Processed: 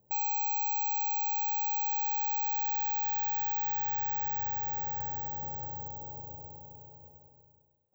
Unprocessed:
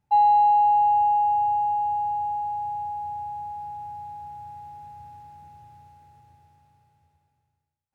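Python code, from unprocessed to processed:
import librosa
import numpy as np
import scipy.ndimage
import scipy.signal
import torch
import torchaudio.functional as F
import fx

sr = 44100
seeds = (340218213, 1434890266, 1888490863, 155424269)

p1 = scipy.signal.sosfilt(scipy.signal.butter(2, 86.0, 'highpass', fs=sr, output='sos'), x)
p2 = fx.rider(p1, sr, range_db=5, speed_s=0.5)
p3 = p1 + F.gain(torch.from_numpy(p2), 2.5).numpy()
p4 = fx.lowpass_res(p3, sr, hz=530.0, q=4.9)
p5 = 10.0 ** (-34.0 / 20.0) * np.tanh(p4 / 10.0 ** (-34.0 / 20.0))
y = (np.kron(scipy.signal.resample_poly(p5, 1, 2), np.eye(2)[0]) * 2)[:len(p5)]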